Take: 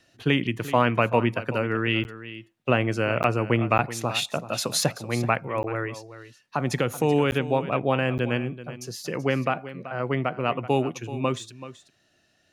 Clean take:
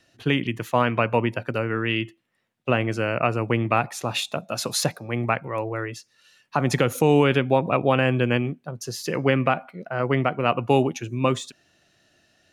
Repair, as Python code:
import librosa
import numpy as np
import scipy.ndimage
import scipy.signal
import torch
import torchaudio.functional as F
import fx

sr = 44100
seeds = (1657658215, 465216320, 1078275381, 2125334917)

y = fx.fix_interpolate(x, sr, at_s=(2.04, 3.23, 3.78, 5.63, 7.31, 8.18), length_ms=9.9)
y = fx.fix_echo_inverse(y, sr, delay_ms=381, level_db=-14.5)
y = fx.fix_level(y, sr, at_s=5.95, step_db=4.0)